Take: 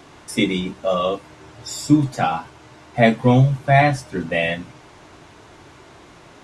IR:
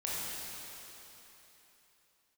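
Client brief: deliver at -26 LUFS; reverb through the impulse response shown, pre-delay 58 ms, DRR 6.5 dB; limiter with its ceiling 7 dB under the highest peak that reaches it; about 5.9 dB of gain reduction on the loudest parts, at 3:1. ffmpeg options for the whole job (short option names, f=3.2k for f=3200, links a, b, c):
-filter_complex "[0:a]acompressor=threshold=-17dB:ratio=3,alimiter=limit=-14.5dB:level=0:latency=1,asplit=2[a][b];[1:a]atrim=start_sample=2205,adelay=58[c];[b][c]afir=irnorm=-1:irlink=0,volume=-11.5dB[d];[a][d]amix=inputs=2:normalize=0,volume=-0.5dB"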